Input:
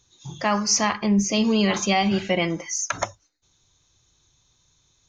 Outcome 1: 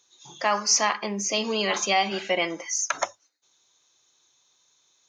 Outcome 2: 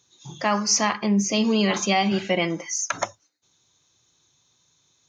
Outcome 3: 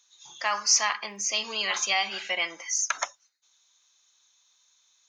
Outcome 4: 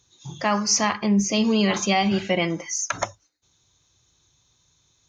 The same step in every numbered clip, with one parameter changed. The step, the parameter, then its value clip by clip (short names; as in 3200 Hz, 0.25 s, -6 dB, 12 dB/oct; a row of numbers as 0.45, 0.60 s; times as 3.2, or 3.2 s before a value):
HPF, cutoff: 430, 150, 1100, 54 Hz